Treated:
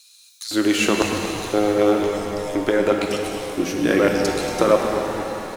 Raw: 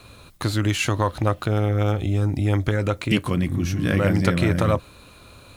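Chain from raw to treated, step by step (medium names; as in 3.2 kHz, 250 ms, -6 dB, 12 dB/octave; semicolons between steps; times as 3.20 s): LFO high-pass square 0.98 Hz 360–5500 Hz; frequency-shifting echo 233 ms, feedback 42%, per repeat -110 Hz, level -11 dB; pitch-shifted reverb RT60 3.2 s, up +7 st, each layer -8 dB, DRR 2.5 dB; trim +2 dB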